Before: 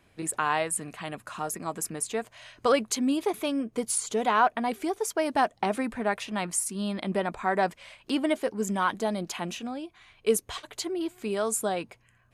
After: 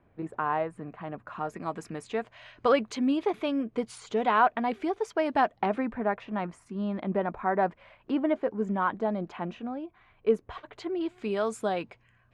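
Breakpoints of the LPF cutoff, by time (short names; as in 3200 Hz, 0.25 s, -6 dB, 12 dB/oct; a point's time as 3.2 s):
1.15 s 1200 Hz
1.66 s 3000 Hz
5.45 s 3000 Hz
6.04 s 1500 Hz
10.56 s 1500 Hz
11.17 s 3600 Hz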